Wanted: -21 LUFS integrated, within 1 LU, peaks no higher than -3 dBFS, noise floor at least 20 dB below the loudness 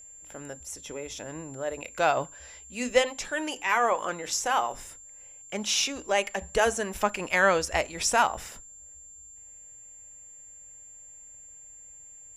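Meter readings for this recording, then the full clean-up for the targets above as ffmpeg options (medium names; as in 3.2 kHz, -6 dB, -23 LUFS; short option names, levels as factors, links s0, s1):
steady tone 7.3 kHz; tone level -46 dBFS; loudness -27.5 LUFS; peak level -8.0 dBFS; loudness target -21.0 LUFS
-> -af "bandreject=f=7300:w=30"
-af "volume=2.11,alimiter=limit=0.708:level=0:latency=1"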